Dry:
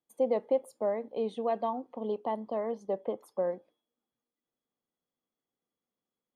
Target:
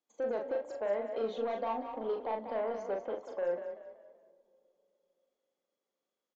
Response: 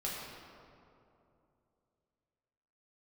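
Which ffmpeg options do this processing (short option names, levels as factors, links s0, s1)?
-filter_complex "[0:a]highpass=290,alimiter=level_in=1.12:limit=0.0631:level=0:latency=1,volume=0.891,aresample=16000,asoftclip=type=tanh:threshold=0.0355,aresample=44100,asplit=2[s0][s1];[s1]adelay=40,volume=0.596[s2];[s0][s2]amix=inputs=2:normalize=0,asplit=5[s3][s4][s5][s6][s7];[s4]adelay=190,afreqshift=31,volume=0.355[s8];[s5]adelay=380,afreqshift=62,volume=0.124[s9];[s6]adelay=570,afreqshift=93,volume=0.0437[s10];[s7]adelay=760,afreqshift=124,volume=0.0151[s11];[s3][s8][s9][s10][s11]amix=inputs=5:normalize=0,asplit=2[s12][s13];[1:a]atrim=start_sample=2205,asetrate=35721,aresample=44100[s14];[s13][s14]afir=irnorm=-1:irlink=0,volume=0.0631[s15];[s12][s15]amix=inputs=2:normalize=0"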